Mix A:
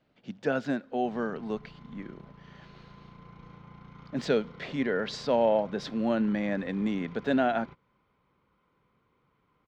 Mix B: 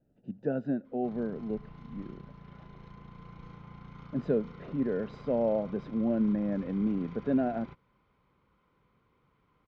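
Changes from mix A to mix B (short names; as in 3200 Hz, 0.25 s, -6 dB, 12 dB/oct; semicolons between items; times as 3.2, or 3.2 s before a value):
speech: add running mean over 40 samples; master: add low shelf 85 Hz +6.5 dB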